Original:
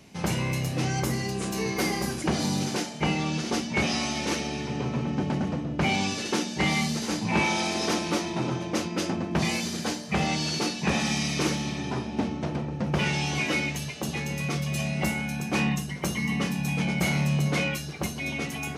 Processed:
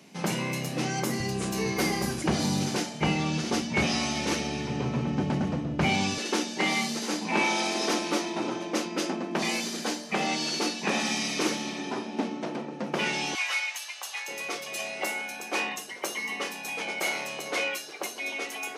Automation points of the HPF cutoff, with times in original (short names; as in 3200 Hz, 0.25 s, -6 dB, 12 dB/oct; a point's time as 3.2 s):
HPF 24 dB/oct
160 Hz
from 1.2 s 60 Hz
from 6.18 s 230 Hz
from 13.35 s 850 Hz
from 14.28 s 370 Hz